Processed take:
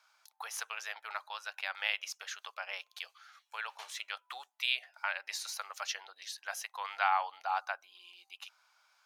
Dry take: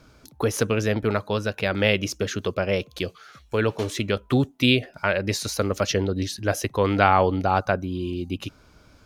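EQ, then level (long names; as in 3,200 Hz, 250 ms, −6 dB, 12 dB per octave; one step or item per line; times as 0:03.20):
elliptic high-pass filter 800 Hz, stop band 80 dB
−9.0 dB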